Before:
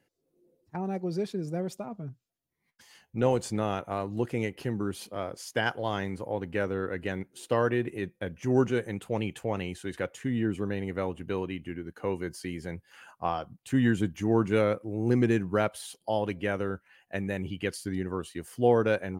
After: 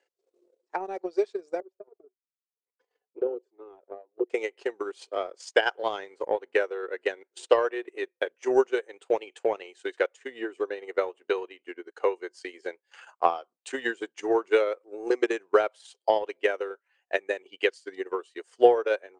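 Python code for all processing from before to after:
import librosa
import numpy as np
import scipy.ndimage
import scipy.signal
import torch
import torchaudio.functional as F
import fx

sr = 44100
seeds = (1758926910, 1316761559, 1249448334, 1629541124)

y = fx.chain(x, sr, fx.bandpass_q(hz=380.0, q=3.9),
    fx.env_flanger(rest_ms=4.1, full_db=-29.0), at=(1.6, 4.3))
y = scipy.signal.sosfilt(scipy.signal.cheby1(4, 1.0, [390.0, 8200.0], 'bandpass', fs=sr, output='sos'), y)
y = fx.transient(y, sr, attack_db=11, sustain_db=-11)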